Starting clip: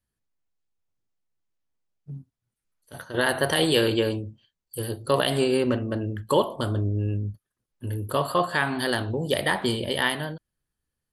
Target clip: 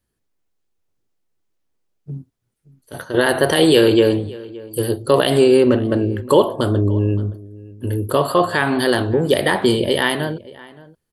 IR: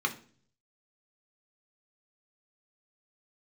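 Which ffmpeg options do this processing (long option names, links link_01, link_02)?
-filter_complex "[0:a]equalizer=frequency=380:width_type=o:width=1.1:gain=6.5,asplit=2[link_01][link_02];[link_02]alimiter=limit=-14dB:level=0:latency=1,volume=-1.5dB[link_03];[link_01][link_03]amix=inputs=2:normalize=0,asplit=2[link_04][link_05];[link_05]adelay=571.4,volume=-20dB,highshelf=frequency=4000:gain=-12.9[link_06];[link_04][link_06]amix=inputs=2:normalize=0,volume=1.5dB"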